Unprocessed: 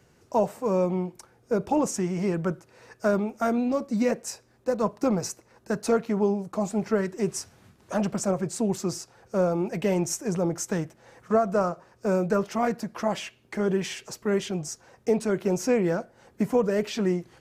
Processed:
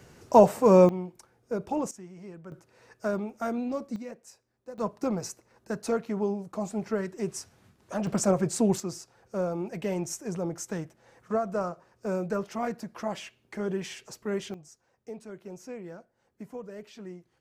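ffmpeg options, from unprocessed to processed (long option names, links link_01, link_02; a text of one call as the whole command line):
ffmpeg -i in.wav -af "asetnsamples=nb_out_samples=441:pad=0,asendcmd='0.89 volume volume -6dB;1.91 volume volume -18dB;2.52 volume volume -6dB;3.96 volume volume -16.5dB;4.78 volume volume -5dB;8.07 volume volume 2dB;8.8 volume volume -6dB;14.54 volume volume -17.5dB',volume=7dB" out.wav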